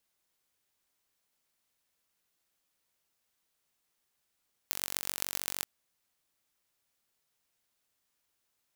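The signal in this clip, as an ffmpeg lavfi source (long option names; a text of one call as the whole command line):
ffmpeg -f lavfi -i "aevalsrc='0.708*eq(mod(n,944),0)*(0.5+0.5*eq(mod(n,5664),0))':duration=0.93:sample_rate=44100" out.wav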